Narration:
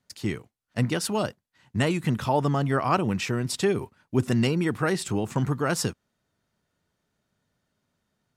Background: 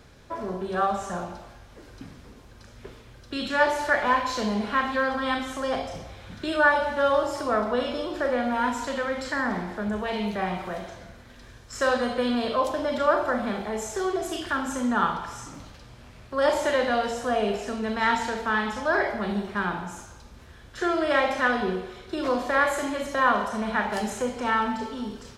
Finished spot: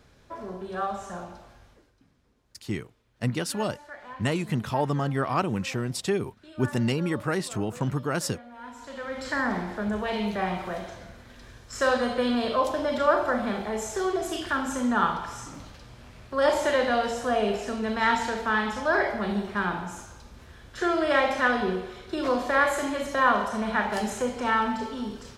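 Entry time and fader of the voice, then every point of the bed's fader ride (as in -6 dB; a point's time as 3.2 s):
2.45 s, -2.5 dB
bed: 1.68 s -5.5 dB
1.95 s -20.5 dB
8.52 s -20.5 dB
9.33 s 0 dB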